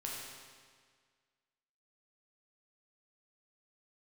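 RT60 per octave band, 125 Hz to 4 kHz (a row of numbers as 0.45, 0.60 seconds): 1.8, 1.8, 1.7, 1.7, 1.7, 1.6 seconds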